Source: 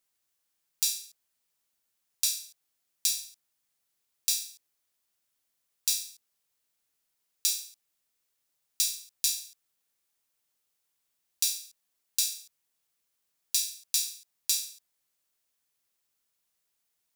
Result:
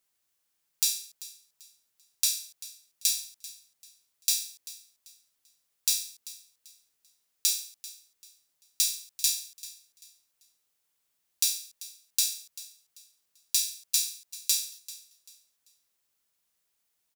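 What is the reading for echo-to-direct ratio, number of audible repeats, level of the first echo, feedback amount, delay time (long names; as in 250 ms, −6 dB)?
−17.0 dB, 2, −17.5 dB, 29%, 390 ms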